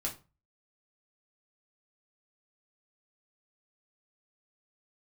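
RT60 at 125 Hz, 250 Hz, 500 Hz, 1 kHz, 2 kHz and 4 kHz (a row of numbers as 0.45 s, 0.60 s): 0.45 s, 0.35 s, 0.30 s, 0.30 s, 0.25 s, 0.25 s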